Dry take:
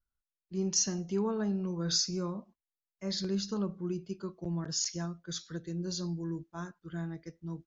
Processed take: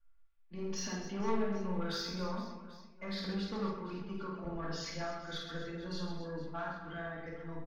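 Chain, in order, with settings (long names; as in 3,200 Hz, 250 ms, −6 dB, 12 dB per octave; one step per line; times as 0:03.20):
Bessel low-pass filter 2,100 Hz, order 4
parametric band 160 Hz −15 dB 2.7 octaves
notch filter 370 Hz, Q 12
comb filter 4.4 ms, depth 55%
in parallel at −1 dB: downward compressor, threshold −49 dBFS, peak gain reduction 15.5 dB
on the sum: soft clipping −35.5 dBFS, distortion −14 dB
on a send: reverse bouncing-ball delay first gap 50 ms, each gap 1.6×, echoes 5
on the sum: rectangular room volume 770 cubic metres, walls furnished, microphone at 2.4 metres
level +1.5 dB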